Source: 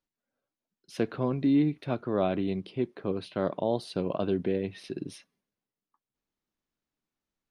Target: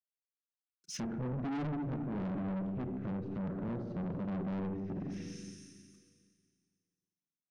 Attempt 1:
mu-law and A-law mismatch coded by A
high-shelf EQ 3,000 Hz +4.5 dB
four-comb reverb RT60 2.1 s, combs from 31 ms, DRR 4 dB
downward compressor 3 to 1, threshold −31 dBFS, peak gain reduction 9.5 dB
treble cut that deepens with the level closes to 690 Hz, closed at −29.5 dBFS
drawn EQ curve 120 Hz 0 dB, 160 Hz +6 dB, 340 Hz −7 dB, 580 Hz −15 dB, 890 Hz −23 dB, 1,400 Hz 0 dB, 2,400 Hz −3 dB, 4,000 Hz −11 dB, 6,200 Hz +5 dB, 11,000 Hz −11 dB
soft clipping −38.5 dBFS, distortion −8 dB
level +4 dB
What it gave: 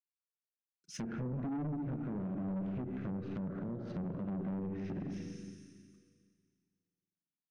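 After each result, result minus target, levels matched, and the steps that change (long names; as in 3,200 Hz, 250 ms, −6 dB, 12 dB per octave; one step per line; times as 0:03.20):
downward compressor: peak gain reduction +9.5 dB; 4,000 Hz band −4.5 dB
remove: downward compressor 3 to 1, threshold −31 dBFS, peak gain reduction 9.5 dB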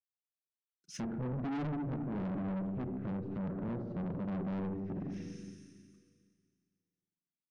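4,000 Hz band −4.5 dB
change: high-shelf EQ 3,000 Hz +15.5 dB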